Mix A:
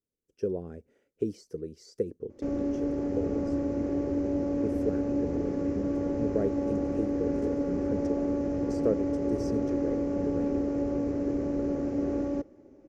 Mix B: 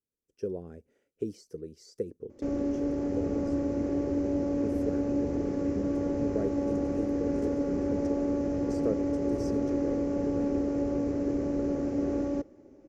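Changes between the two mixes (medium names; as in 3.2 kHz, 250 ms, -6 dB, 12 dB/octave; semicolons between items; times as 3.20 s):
speech -3.5 dB; master: add treble shelf 4.9 kHz +5 dB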